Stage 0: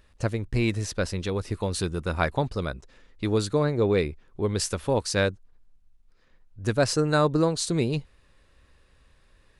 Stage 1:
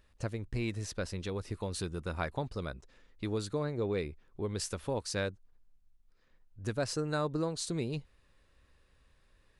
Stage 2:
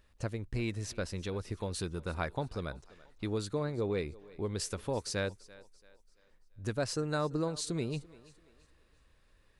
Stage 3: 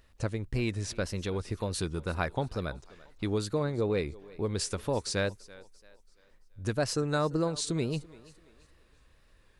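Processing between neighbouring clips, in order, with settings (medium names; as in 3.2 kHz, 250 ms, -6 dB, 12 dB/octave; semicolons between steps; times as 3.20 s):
compression 1.5:1, threshold -28 dBFS, peak gain reduction 4.5 dB; trim -7 dB
thinning echo 338 ms, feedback 40%, high-pass 220 Hz, level -20 dB
wow and flutter 60 cents; trim +4 dB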